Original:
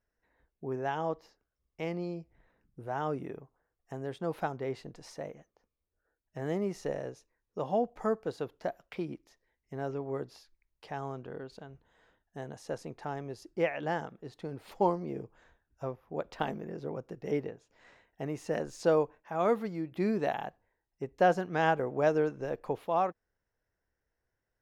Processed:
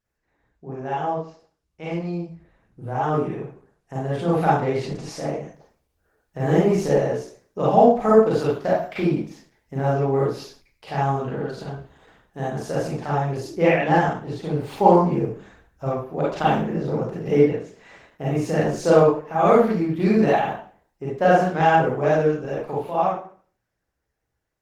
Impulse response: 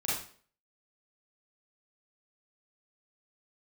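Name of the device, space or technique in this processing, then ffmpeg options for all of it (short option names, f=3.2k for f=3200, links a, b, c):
speakerphone in a meeting room: -filter_complex "[0:a]asettb=1/sr,asplit=3[a][b][c];[a]atrim=end=18.314[d];[b]atrim=start=18.31:end=18.78,asetpts=PTS-STARTPTS,afade=t=in:d=0.004:c=qsin,afade=t=out:st=0.466:d=0.004:c=qsin,adynamicequalizer=threshold=0.002:dfrequency=130:dqfactor=2.8:tfrequency=130:tqfactor=2.8:attack=5:release=100:ratio=0.375:range=2:mode=boostabove:tftype=bell[e];[c]atrim=start=18.776[f];[d][e]acrossfade=d=0.004:c1=hsin:c2=qsin[g];[g][f]acrossfade=d=0.004:c1=qsin:c2=hsin[h];[1:a]atrim=start_sample=2205[i];[h][i]afir=irnorm=-1:irlink=0,dynaudnorm=f=550:g=13:m=12dB" -ar 48000 -c:a libopus -b:a 16k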